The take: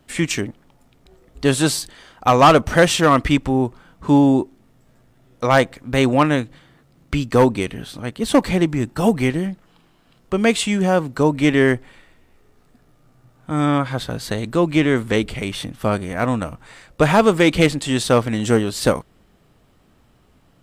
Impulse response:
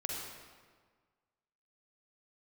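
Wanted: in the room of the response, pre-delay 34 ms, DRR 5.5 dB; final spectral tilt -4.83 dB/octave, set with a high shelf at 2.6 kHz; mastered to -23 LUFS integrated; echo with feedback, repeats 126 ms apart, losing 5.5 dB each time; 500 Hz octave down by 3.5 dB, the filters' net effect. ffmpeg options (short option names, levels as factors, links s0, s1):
-filter_complex "[0:a]equalizer=f=500:t=o:g=-4.5,highshelf=f=2600:g=3,aecho=1:1:126|252|378|504|630|756|882:0.531|0.281|0.149|0.079|0.0419|0.0222|0.0118,asplit=2[s0][s1];[1:a]atrim=start_sample=2205,adelay=34[s2];[s1][s2]afir=irnorm=-1:irlink=0,volume=0.398[s3];[s0][s3]amix=inputs=2:normalize=0,volume=0.501"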